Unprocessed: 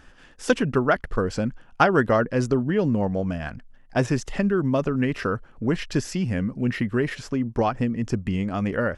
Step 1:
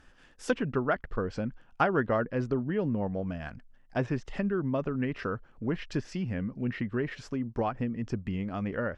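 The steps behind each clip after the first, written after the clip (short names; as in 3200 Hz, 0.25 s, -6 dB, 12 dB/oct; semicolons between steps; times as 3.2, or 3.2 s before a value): treble ducked by the level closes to 3000 Hz, closed at -20 dBFS; gain -7.5 dB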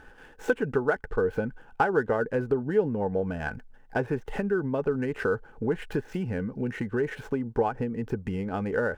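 median filter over 9 samples; compressor 3:1, threshold -35 dBFS, peak gain reduction 11 dB; small resonant body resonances 450/830/1500 Hz, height 12 dB, ringing for 35 ms; gain +5.5 dB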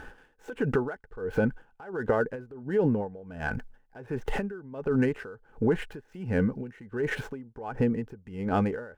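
limiter -21.5 dBFS, peak gain reduction 11.5 dB; dB-linear tremolo 1.4 Hz, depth 22 dB; gain +7 dB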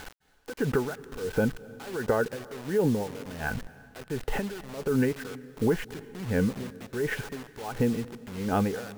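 bit-crush 7-bit; reverb RT60 1.8 s, pre-delay 0.201 s, DRR 18.5 dB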